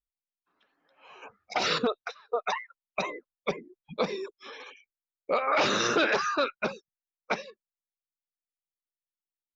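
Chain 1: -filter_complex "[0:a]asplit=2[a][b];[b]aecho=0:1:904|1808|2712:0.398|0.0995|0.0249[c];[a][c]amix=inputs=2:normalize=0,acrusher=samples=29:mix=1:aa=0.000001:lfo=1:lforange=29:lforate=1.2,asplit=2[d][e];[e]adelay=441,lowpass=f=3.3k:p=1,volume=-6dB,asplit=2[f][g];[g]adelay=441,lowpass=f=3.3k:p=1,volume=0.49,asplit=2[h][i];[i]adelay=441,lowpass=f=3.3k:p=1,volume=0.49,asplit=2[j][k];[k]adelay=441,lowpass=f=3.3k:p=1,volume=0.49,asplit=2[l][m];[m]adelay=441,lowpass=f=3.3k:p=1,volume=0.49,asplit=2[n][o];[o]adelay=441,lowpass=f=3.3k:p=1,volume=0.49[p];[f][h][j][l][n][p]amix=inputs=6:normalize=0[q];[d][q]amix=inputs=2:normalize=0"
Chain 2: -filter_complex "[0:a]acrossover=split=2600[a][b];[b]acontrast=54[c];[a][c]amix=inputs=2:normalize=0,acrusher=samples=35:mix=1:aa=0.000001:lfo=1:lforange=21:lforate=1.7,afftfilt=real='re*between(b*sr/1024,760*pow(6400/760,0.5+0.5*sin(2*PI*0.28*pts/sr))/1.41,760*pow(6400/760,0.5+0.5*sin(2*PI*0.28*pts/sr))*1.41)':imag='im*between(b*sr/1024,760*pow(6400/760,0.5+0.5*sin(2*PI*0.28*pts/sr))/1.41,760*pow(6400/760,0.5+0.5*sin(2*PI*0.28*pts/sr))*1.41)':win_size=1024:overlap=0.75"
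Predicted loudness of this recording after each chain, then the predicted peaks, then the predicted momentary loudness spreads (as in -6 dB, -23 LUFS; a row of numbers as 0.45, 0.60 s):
-29.5, -38.0 LUFS; -13.5, -17.5 dBFS; 15, 17 LU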